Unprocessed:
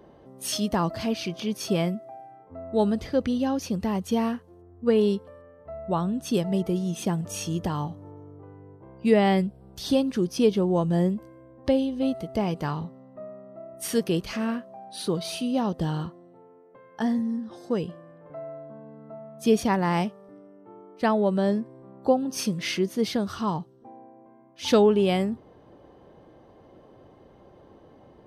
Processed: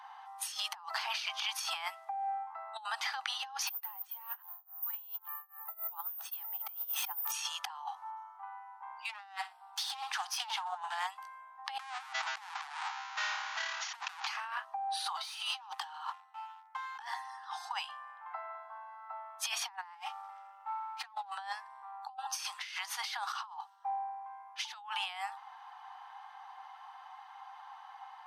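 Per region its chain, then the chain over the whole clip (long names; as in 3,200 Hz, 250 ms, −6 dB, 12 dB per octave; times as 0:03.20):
0:03.67–0:07.32: high-shelf EQ 5,800 Hz −9.5 dB + bad sample-rate conversion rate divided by 3×, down filtered, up zero stuff + amplitude tremolo 3.6 Hz, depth 96%
0:09.09–0:11.07: phase distortion by the signal itself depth 0.21 ms + repeating echo 62 ms, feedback 21%, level −18.5 dB
0:11.79–0:14.27: each half-wave held at its own peak + linear-phase brick-wall low-pass 7,100 Hz + highs frequency-modulated by the lows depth 0.92 ms
0:15.23–0:17.14: Butterworth high-pass 750 Hz 72 dB per octave + leveller curve on the samples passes 2
0:19.95–0:21.35: comb filter 3.7 ms, depth 100% + windowed peak hold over 3 samples
whole clip: Chebyshev high-pass filter 770 Hz, order 8; spectral tilt −2.5 dB per octave; compressor whose output falls as the input rises −46 dBFS, ratio −1; level +4.5 dB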